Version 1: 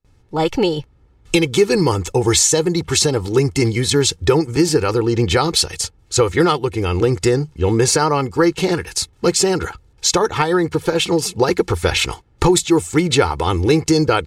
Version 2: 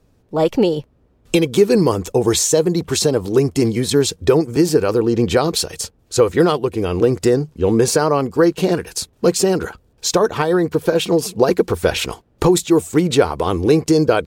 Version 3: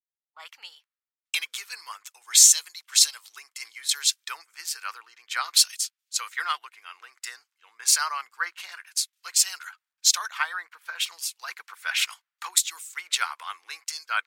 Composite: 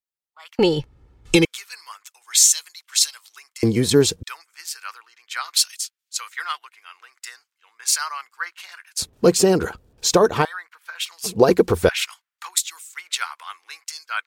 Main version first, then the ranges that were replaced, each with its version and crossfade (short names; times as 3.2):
3
0.59–1.45 from 1
3.63–4.23 from 2
8.99–10.45 from 2
11.24–11.89 from 2